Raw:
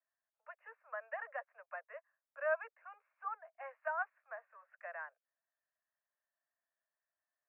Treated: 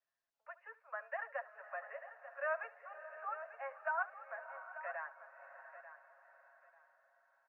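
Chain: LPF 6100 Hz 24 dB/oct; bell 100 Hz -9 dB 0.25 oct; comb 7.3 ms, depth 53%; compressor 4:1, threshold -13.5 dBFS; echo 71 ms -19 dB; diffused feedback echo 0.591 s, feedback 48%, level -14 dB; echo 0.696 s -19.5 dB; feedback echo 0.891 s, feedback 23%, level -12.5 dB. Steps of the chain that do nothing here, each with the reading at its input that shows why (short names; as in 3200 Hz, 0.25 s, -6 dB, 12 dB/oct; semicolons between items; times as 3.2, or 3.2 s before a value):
LPF 6100 Hz: input band ends at 2300 Hz; bell 100 Hz: input band starts at 430 Hz; compressor, threshold -13.5 dBFS: input peak -25.0 dBFS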